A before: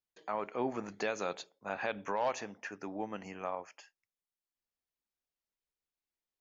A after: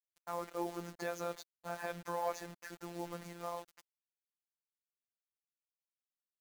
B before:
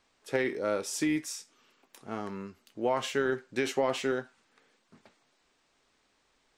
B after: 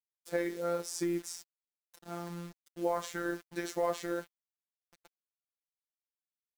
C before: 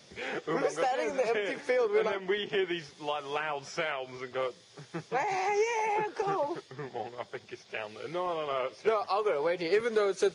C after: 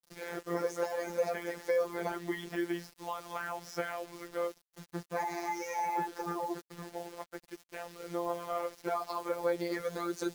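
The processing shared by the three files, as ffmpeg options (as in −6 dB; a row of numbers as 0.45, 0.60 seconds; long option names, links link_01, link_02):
-af "equalizer=frequency=2800:width=2.4:gain=-12.5,acrusher=bits=7:mix=0:aa=0.000001,afftfilt=real='hypot(re,im)*cos(PI*b)':imag='0':win_size=1024:overlap=0.75"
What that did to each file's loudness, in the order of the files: −4.0, −4.5, −5.0 LU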